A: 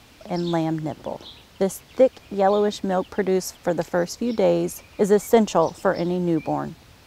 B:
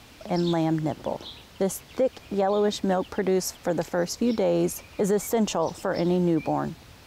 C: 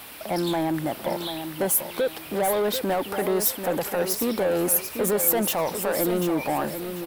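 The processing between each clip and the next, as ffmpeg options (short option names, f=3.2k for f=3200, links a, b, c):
-af "alimiter=limit=-15.5dB:level=0:latency=1:release=46,volume=1dB"
-filter_complex "[0:a]asplit=2[a][b];[b]highpass=f=720:p=1,volume=18dB,asoftclip=type=tanh:threshold=-14dB[c];[a][c]amix=inputs=2:normalize=0,lowpass=f=3.5k:p=1,volume=-6dB,aexciter=amount=11.7:drive=3.9:freq=9.2k,aecho=1:1:740|1480|2220:0.376|0.101|0.0274,volume=-3dB"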